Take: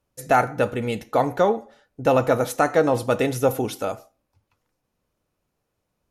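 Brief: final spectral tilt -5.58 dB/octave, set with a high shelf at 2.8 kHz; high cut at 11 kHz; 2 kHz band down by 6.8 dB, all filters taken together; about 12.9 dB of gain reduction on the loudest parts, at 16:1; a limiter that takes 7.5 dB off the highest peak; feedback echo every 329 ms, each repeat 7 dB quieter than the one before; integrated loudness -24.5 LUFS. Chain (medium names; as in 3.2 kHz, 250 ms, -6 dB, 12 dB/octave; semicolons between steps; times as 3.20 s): low-pass 11 kHz; peaking EQ 2 kHz -7.5 dB; treble shelf 2.8 kHz -7 dB; compression 16:1, threshold -27 dBFS; peak limiter -23.5 dBFS; feedback delay 329 ms, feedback 45%, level -7 dB; trim +10 dB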